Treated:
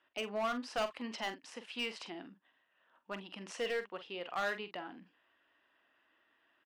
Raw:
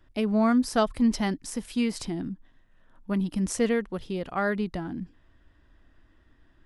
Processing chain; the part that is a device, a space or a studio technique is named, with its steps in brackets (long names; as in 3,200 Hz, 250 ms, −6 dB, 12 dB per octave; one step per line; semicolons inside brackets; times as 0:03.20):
megaphone (band-pass filter 620–3,400 Hz; parametric band 2,800 Hz +9 dB 0.29 octaves; hard clipping −26.5 dBFS, distortion −8 dB; double-tracking delay 45 ms −11 dB)
level −3.5 dB